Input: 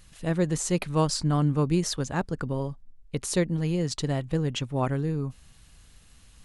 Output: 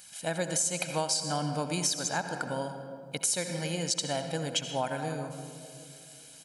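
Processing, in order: high-pass 320 Hz 12 dB/octave; treble shelf 4.2 kHz +11.5 dB; comb 1.3 ms, depth 69%; reverberation RT60 2.4 s, pre-delay 64 ms, DRR 7.5 dB; compression 6:1, threshold -26 dBFS, peak gain reduction 9 dB

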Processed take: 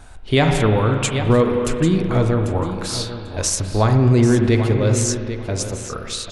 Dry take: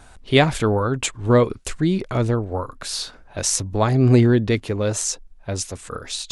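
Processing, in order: bass shelf 92 Hz +6.5 dB; feedback delay 793 ms, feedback 16%, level -12 dB; on a send at -5 dB: reverberation RT60 2.3 s, pre-delay 37 ms; on the sum: loudness maximiser +6 dB; trim -5 dB

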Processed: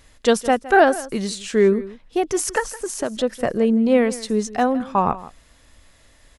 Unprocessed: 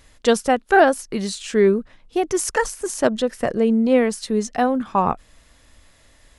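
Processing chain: 2.59–3.17 s: compression 4:1, threshold -22 dBFS, peak gain reduction 9.5 dB; on a send: delay 164 ms -17.5 dB

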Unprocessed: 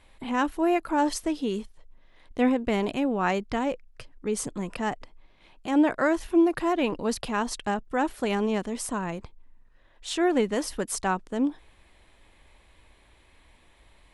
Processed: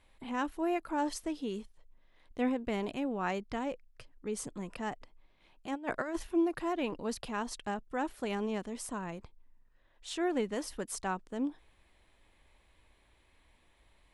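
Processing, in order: 5.74–6.23 s: compressor with a negative ratio -26 dBFS, ratio -0.5; trim -8.5 dB

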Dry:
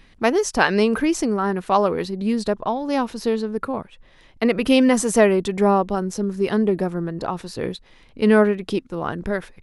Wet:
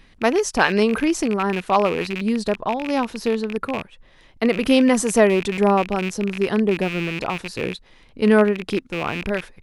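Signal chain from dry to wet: rattle on loud lows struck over -35 dBFS, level -18 dBFS

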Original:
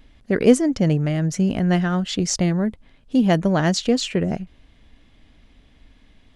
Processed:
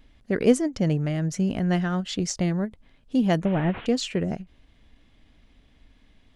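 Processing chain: 3.45–3.86 s: one-bit delta coder 16 kbps, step -29 dBFS; endings held to a fixed fall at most 320 dB/s; trim -4.5 dB

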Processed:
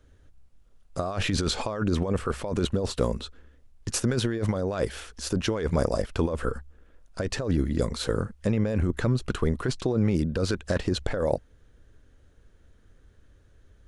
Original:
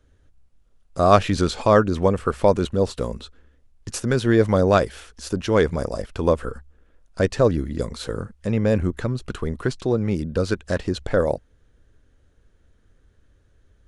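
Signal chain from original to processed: compressor with a negative ratio -23 dBFS, ratio -1; trim -2 dB

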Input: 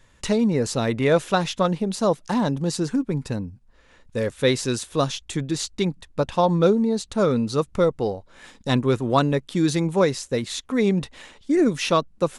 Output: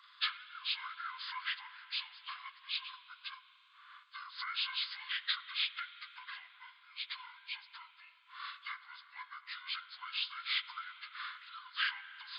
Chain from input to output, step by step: frequency axis rescaled in octaves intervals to 79%; peak limiter -15.5 dBFS, peak gain reduction 8.5 dB; compression 6:1, threshold -34 dBFS, peak gain reduction 14 dB; rippled Chebyshev high-pass 1 kHz, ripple 6 dB; spring tank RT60 3.9 s, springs 33/54 ms, chirp 65 ms, DRR 13 dB; trim +7.5 dB

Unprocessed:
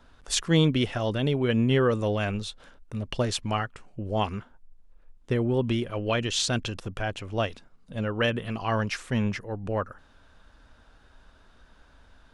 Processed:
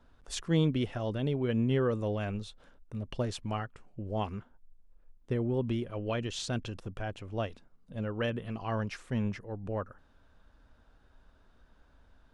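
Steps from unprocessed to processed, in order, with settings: tilt shelf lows +3.5 dB, about 1.1 kHz; trim -8.5 dB

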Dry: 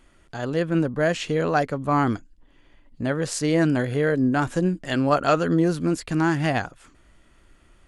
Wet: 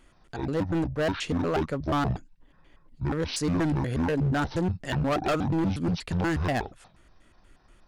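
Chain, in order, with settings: pitch shift switched off and on -10.5 st, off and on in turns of 120 ms; overload inside the chain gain 20.5 dB; trim -1.5 dB

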